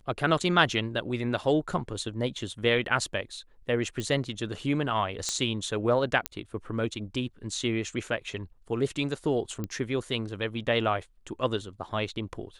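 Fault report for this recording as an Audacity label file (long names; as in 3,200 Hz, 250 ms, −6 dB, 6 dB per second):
4.000000	4.000000	click
5.290000	5.290000	click −15 dBFS
6.260000	6.260000	click −10 dBFS
9.640000	9.640000	click −20 dBFS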